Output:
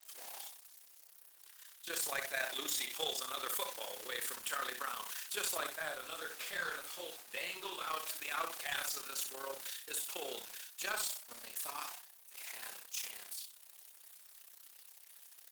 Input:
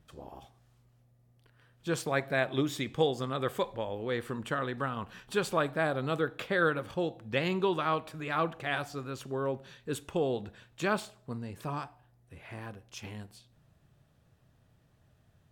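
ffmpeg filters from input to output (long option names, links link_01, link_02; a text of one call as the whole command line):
ffmpeg -i in.wav -filter_complex "[0:a]aeval=exprs='val(0)+0.5*0.0119*sgn(val(0))':channel_layout=same,deesser=0.75,agate=range=-33dB:threshold=-37dB:ratio=3:detection=peak,highpass=350,aderivative,asoftclip=type=hard:threshold=-40dB,tremolo=f=32:d=0.667,asettb=1/sr,asplit=3[link_01][link_02][link_03];[link_01]atrim=end=5.754[link_04];[link_02]atrim=start=5.75:end=7.9,asetpts=PTS-STARTPTS,afade=type=in:duration=0.004:curve=qsin,afade=type=out:start_time=2.146:duration=0.004:curve=qsin,flanger=delay=17.5:depth=5.9:speed=1.7[link_05];[link_03]atrim=start=7.896[link_06];[link_04][link_05]acrossfade=duration=0.004:curve1=hsin:curve2=qsin[link_07];[link_07][link_06]acrossfade=duration=0.004:curve1=qsin:curve2=hsin,aecho=1:1:40|64:0.211|0.447,volume=12.5dB" -ar 48000 -c:a libopus -b:a 16k out.opus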